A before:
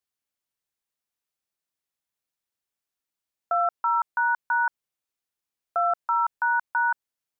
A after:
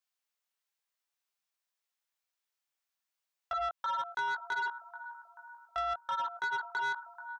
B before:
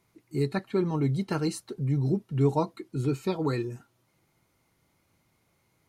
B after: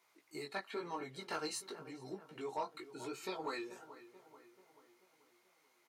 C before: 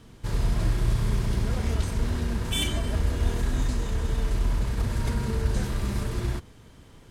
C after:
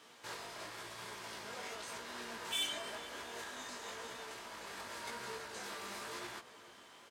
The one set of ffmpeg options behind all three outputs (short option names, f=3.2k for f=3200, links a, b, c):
-filter_complex "[0:a]acompressor=threshold=-29dB:ratio=4,highpass=680,equalizer=f=11k:w=1.4:g=-4.5,flanger=delay=16:depth=4.4:speed=0.94,asplit=2[a][b];[b]adelay=435,lowpass=f=2.2k:p=1,volume=-15dB,asplit=2[c][d];[d]adelay=435,lowpass=f=2.2k:p=1,volume=0.55,asplit=2[e][f];[f]adelay=435,lowpass=f=2.2k:p=1,volume=0.55,asplit=2[g][h];[h]adelay=435,lowpass=f=2.2k:p=1,volume=0.55,asplit=2[i][j];[j]adelay=435,lowpass=f=2.2k:p=1,volume=0.55[k];[a][c][e][g][i][k]amix=inputs=6:normalize=0,asoftclip=type=tanh:threshold=-32.5dB,volume=4dB"